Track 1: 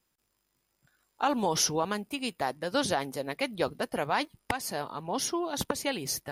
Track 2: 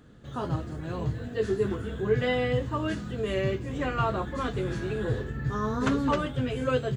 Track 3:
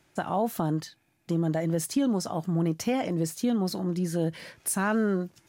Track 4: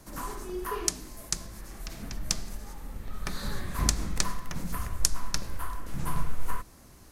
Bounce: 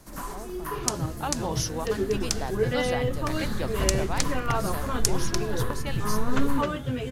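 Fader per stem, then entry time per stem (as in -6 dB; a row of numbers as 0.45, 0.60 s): -4.5, -0.5, -16.5, +0.5 dB; 0.00, 0.50, 0.00, 0.00 s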